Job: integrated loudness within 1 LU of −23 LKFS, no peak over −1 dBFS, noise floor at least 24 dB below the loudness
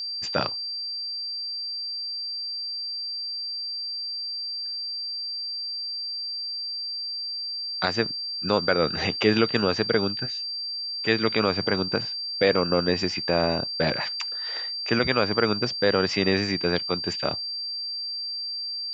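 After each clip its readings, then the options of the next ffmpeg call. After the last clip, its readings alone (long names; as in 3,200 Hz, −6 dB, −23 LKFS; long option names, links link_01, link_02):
interfering tone 4,700 Hz; level of the tone −29 dBFS; integrated loudness −25.5 LKFS; sample peak −5.5 dBFS; target loudness −23.0 LKFS
→ -af "bandreject=frequency=4700:width=30"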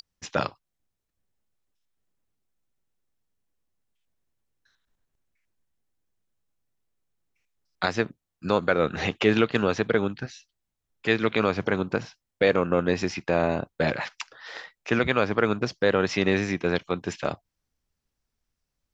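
interfering tone none found; integrated loudness −25.5 LKFS; sample peak −6.0 dBFS; target loudness −23.0 LKFS
→ -af "volume=2.5dB"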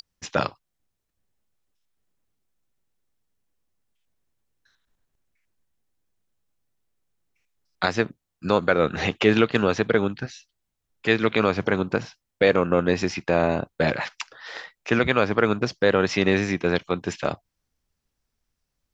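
integrated loudness −23.0 LKFS; sample peak −3.5 dBFS; background noise floor −80 dBFS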